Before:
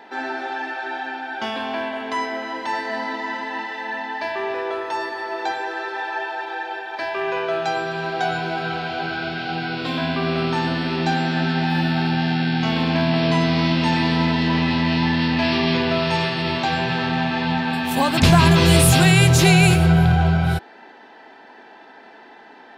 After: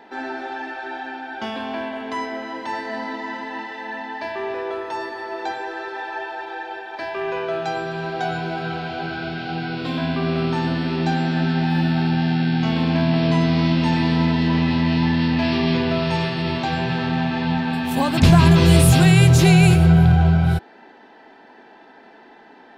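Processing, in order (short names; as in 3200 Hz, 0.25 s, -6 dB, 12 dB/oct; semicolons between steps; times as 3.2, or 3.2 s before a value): low shelf 420 Hz +7 dB; gain -4 dB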